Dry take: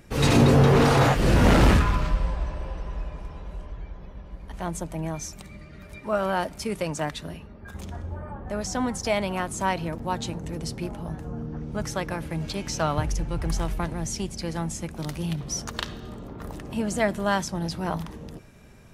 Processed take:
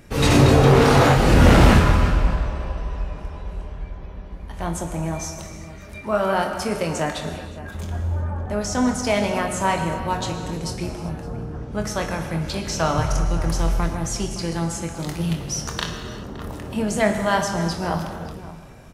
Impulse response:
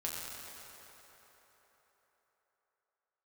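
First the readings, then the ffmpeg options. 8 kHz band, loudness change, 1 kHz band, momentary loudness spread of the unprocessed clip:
+4.5 dB, +4.5 dB, +5.0 dB, 21 LU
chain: -filter_complex "[0:a]asplit=2[s0][s1];[s1]adelay=565.6,volume=0.178,highshelf=f=4000:g=-12.7[s2];[s0][s2]amix=inputs=2:normalize=0,asplit=2[s3][s4];[1:a]atrim=start_sample=2205,afade=t=out:st=0.43:d=0.01,atrim=end_sample=19404,adelay=24[s5];[s4][s5]afir=irnorm=-1:irlink=0,volume=0.562[s6];[s3][s6]amix=inputs=2:normalize=0,volume=1.41"

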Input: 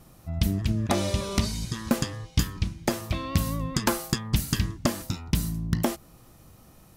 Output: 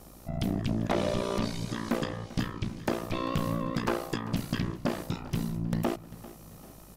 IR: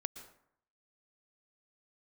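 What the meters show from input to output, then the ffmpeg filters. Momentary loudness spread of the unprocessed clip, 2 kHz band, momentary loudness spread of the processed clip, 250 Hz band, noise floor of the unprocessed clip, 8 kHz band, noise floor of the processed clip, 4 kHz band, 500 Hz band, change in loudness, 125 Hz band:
5 LU, -3.0 dB, 10 LU, -2.0 dB, -54 dBFS, -12.0 dB, -50 dBFS, -7.0 dB, 0.0 dB, -4.0 dB, -5.5 dB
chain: -filter_complex "[0:a]acrossover=split=4100[s0][s1];[s0]tremolo=f=59:d=0.974[s2];[s1]acompressor=threshold=0.00282:ratio=10[s3];[s2][s3]amix=inputs=2:normalize=0,equalizer=f=490:w=0.52:g=5,asplit=2[s4][s5];[s5]acontrast=88,volume=0.891[s6];[s4][s6]amix=inputs=2:normalize=0,equalizer=f=61:w=1.4:g=-13,aeval=exprs='val(0)+0.00398*(sin(2*PI*50*n/s)+sin(2*PI*2*50*n/s)/2+sin(2*PI*3*50*n/s)/3+sin(2*PI*4*50*n/s)/4+sin(2*PI*5*50*n/s)/5)':c=same,asoftclip=type=tanh:threshold=0.168,aecho=1:1:394|788|1182|1576:0.126|0.0617|0.0302|0.0148[s7];[1:a]atrim=start_sample=2205,atrim=end_sample=3969,asetrate=31311,aresample=44100[s8];[s7][s8]afir=irnorm=-1:irlink=0,volume=0.531"

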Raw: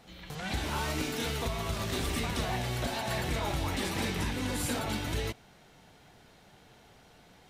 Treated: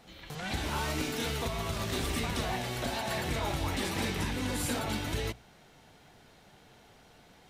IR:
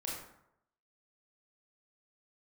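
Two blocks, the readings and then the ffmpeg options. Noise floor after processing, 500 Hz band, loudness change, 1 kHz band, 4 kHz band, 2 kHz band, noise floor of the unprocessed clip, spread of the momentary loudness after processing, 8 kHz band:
-59 dBFS, 0.0 dB, 0.0 dB, 0.0 dB, 0.0 dB, 0.0 dB, -58 dBFS, 4 LU, 0.0 dB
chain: -af "bandreject=f=60:t=h:w=6,bandreject=f=120:t=h:w=6,bandreject=f=180:t=h:w=6"

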